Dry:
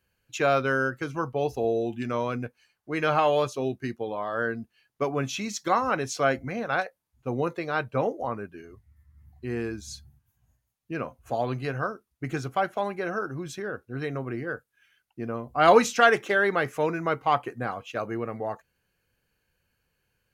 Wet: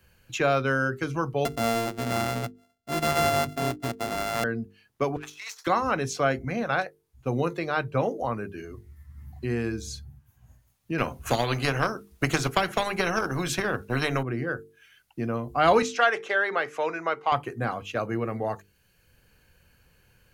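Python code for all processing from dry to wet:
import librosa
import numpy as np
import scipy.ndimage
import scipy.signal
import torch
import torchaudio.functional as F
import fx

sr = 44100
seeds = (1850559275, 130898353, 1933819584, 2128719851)

y = fx.chain(x, sr, fx.sample_sort(block=64),
    fx.transient(attack_db=-3, sustain_db=-7), at=(1.45, 4.44))
y = fx.chain(y, sr, fx.halfwave_gain(db=-12.0),
    fx.highpass(hz=1000.0, slope=24),
    fx.over_compress(threshold_db=-45.0, ratio=-0.5), at=(5.16, 5.67))
y = fx.chain(y, sr, fx.transient(attack_db=7, sustain_db=-3),
    fx.spectral_comp(ratio=2.0), at=(10.98, 14.23))
y = fx.chain(y, sr, fx.highpass(hz=510.0, slope=12),
    fx.air_absorb(metres=61.0), at=(15.82, 17.32))
y = fx.low_shelf(y, sr, hz=150.0, db=8.0)
y = fx.hum_notches(y, sr, base_hz=50, count=9)
y = fx.band_squash(y, sr, depth_pct=40)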